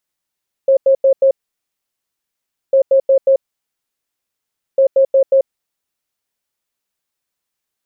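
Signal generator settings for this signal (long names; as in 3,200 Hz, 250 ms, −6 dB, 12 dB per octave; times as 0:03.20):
beeps in groups sine 539 Hz, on 0.09 s, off 0.09 s, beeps 4, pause 1.42 s, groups 3, −7 dBFS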